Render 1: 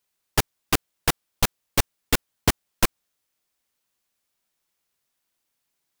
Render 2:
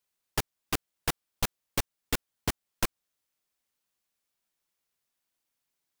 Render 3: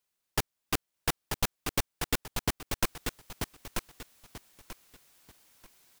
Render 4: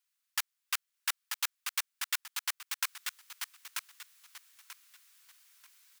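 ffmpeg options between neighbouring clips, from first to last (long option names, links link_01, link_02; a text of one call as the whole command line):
ffmpeg -i in.wav -af "alimiter=limit=-9dB:level=0:latency=1:release=320,volume=-5.5dB" out.wav
ffmpeg -i in.wav -af "areverse,acompressor=mode=upward:threshold=-47dB:ratio=2.5,areverse,aecho=1:1:937|1874|2811:0.562|0.146|0.038" out.wav
ffmpeg -i in.wav -af "highpass=frequency=1200:width=0.5412,highpass=frequency=1200:width=1.3066" out.wav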